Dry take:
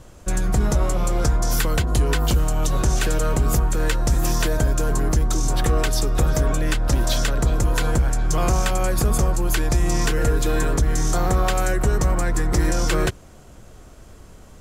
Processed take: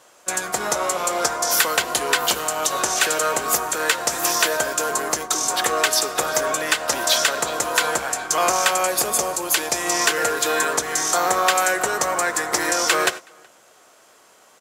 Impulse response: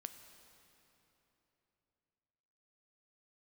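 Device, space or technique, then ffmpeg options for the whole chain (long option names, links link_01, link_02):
keyed gated reverb: -filter_complex "[0:a]highpass=670,asettb=1/sr,asplit=3[link_01][link_02][link_03];[link_01]atrim=end=8.864[link_04];[link_02]atrim=start=8.86:end=9.76,asetpts=PTS-STARTPTS,afade=type=in:duration=0.004:curve=qsin,afade=type=out:start_time=0.896:duration=0.004:curve=qsin,equalizer=frequency=1400:width=1.3:gain=-5.5[link_05];[link_03]atrim=start=9.756[link_06];[link_04][link_05]acrossfade=duration=0.004:curve1=hsin:curve2=qsin[link_07];[link_07][link_06]acrossfade=duration=0.004:curve1=qsin:curve2=hsin,asplit=2[link_08][link_09];[link_09]adelay=373.2,volume=-23dB,highshelf=frequency=4000:gain=-8.4[link_10];[link_08][link_10]amix=inputs=2:normalize=0,asplit=3[link_11][link_12][link_13];[1:a]atrim=start_sample=2205[link_14];[link_12][link_14]afir=irnorm=-1:irlink=0[link_15];[link_13]apad=whole_len=660547[link_16];[link_15][link_16]sidechaingate=range=-33dB:threshold=-36dB:ratio=16:detection=peak,volume=6dB[link_17];[link_11][link_17]amix=inputs=2:normalize=0,volume=1.5dB"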